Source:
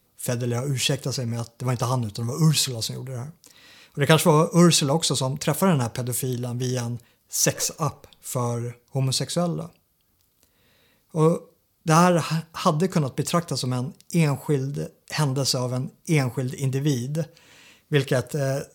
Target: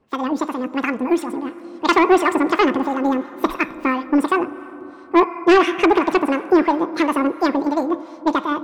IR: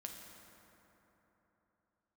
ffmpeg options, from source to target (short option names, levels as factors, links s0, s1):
-filter_complex "[0:a]lowpass=1200,asetrate=95697,aresample=44100,asplit=2[s0][s1];[1:a]atrim=start_sample=2205[s2];[s1][s2]afir=irnorm=-1:irlink=0,volume=0.562[s3];[s0][s3]amix=inputs=2:normalize=0,acrossover=split=900[s4][s5];[s4]aeval=exprs='val(0)*(1-0.5/2+0.5/2*cos(2*PI*2.9*n/s))':c=same[s6];[s5]aeval=exprs='val(0)*(1-0.5/2-0.5/2*cos(2*PI*2.9*n/s))':c=same[s7];[s6][s7]amix=inputs=2:normalize=0,dynaudnorm=f=450:g=9:m=3.76,asoftclip=type=tanh:threshold=0.316,volume=1.58"